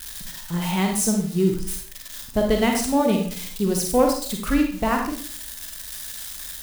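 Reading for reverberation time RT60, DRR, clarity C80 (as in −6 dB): 0.50 s, 2.0 dB, 9.0 dB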